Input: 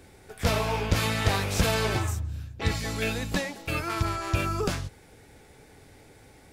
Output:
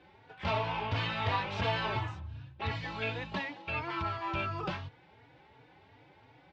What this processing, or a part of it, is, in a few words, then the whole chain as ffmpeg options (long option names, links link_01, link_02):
barber-pole flanger into a guitar amplifier: -filter_complex "[0:a]asplit=2[link_01][link_02];[link_02]adelay=3.5,afreqshift=2.8[link_03];[link_01][link_03]amix=inputs=2:normalize=1,asoftclip=type=tanh:threshold=-17.5dB,highpass=110,equalizer=frequency=120:width_type=q:width=4:gain=3,equalizer=frequency=220:width_type=q:width=4:gain=-7,equalizer=frequency=420:width_type=q:width=4:gain=-5,equalizer=frequency=940:width_type=q:width=4:gain=9,equalizer=frequency=2900:width_type=q:width=4:gain=4,lowpass=frequency=3800:width=0.5412,lowpass=frequency=3800:width=1.3066,volume=-2.5dB"